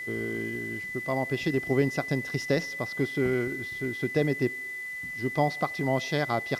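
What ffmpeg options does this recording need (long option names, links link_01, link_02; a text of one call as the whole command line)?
ffmpeg -i in.wav -af "bandreject=frequency=2000:width=30,afwtdn=0.002" out.wav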